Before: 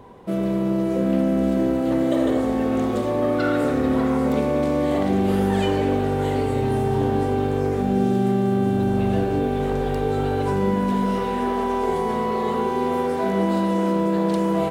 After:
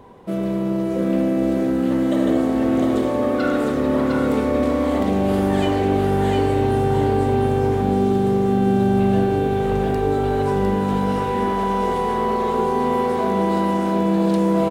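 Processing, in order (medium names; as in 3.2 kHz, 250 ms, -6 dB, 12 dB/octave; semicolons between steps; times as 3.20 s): hum notches 60/120 Hz; on a send: delay 705 ms -3.5 dB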